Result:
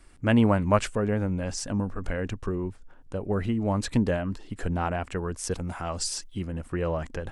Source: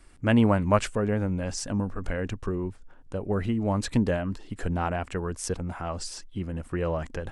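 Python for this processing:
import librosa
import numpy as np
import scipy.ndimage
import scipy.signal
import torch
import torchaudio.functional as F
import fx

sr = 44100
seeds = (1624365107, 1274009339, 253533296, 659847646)

y = fx.high_shelf(x, sr, hz=3700.0, db=9.5, at=(5.51, 6.45))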